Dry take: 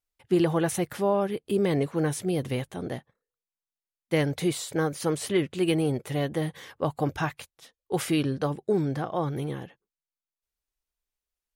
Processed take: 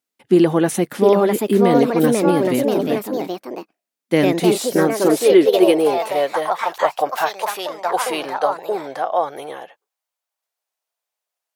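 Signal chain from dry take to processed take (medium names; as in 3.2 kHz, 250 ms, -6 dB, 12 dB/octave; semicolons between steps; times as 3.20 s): high-pass sweep 230 Hz -> 660 Hz, 4.80–6.48 s; ever faster or slower copies 757 ms, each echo +3 st, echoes 2; trim +6 dB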